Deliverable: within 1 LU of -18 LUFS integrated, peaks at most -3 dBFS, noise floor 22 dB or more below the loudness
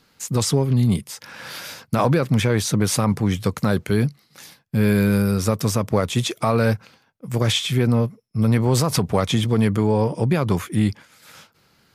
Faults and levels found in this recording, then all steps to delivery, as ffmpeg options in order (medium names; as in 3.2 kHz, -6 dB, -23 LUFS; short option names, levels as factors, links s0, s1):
loudness -20.5 LUFS; peak level -7.5 dBFS; loudness target -18.0 LUFS
-> -af "volume=1.33"